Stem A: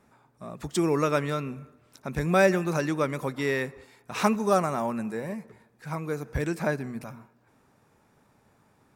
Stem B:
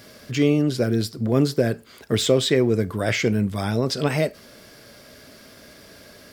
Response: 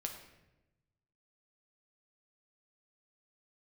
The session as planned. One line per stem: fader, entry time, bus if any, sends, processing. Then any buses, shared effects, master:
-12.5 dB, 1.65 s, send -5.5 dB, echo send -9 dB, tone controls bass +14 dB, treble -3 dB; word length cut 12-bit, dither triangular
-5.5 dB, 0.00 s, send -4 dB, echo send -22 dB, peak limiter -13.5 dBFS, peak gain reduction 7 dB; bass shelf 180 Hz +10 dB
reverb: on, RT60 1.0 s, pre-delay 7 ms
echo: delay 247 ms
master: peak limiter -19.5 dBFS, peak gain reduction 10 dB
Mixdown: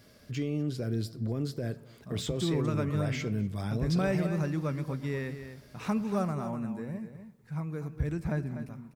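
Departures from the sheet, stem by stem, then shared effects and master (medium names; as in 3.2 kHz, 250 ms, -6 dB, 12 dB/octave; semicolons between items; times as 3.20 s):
stem B -5.5 dB -> -15.0 dB; reverb return -7.5 dB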